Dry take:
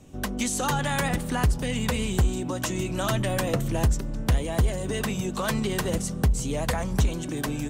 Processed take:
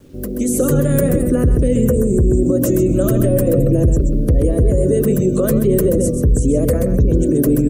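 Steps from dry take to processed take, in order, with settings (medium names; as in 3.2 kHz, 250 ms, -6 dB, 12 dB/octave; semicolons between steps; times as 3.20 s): rattle on loud lows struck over -26 dBFS, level -35 dBFS; spectral gate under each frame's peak -30 dB strong; hum notches 60/120/180/240/300/360/420/480/540 Hz; spectral replace 1.85–2.39 s, 1.9–5.4 kHz after; FFT filter 130 Hz 0 dB, 200 Hz -1 dB, 310 Hz +5 dB, 550 Hz +4 dB, 870 Hz -29 dB, 1.2 kHz -14 dB, 3.5 kHz -23 dB, 8.7 kHz -5 dB, 13 kHz +5 dB; level rider gain up to 9.5 dB; bit crusher 10-bit; on a send: delay 130 ms -7.5 dB; on the sum: loudness maximiser +10 dB; trim -5 dB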